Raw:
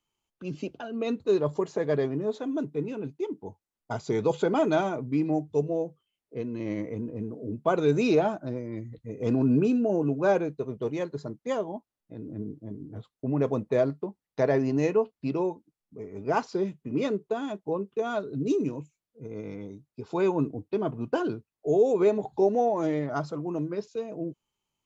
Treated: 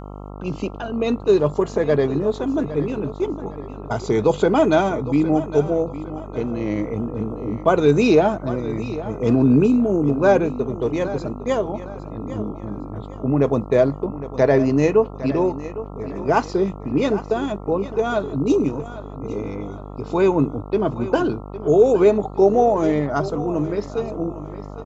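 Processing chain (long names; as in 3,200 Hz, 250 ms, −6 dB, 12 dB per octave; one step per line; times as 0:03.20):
gain on a spectral selection 0:09.67–0:10.10, 450–6,300 Hz −7 dB
repeating echo 809 ms, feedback 35%, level −14.5 dB
hum with harmonics 50 Hz, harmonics 27, −43 dBFS −4 dB per octave
level +8 dB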